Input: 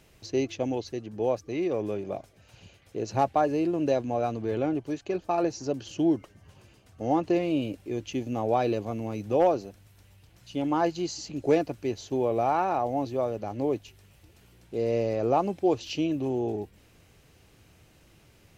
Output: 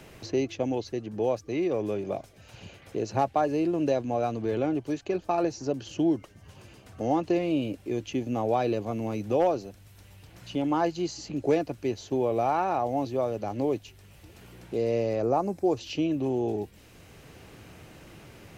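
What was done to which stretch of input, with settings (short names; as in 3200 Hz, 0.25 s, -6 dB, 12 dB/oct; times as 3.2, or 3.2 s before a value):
15.22–15.77 bell 3100 Hz -14.5 dB 0.9 oct
whole clip: three-band squash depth 40%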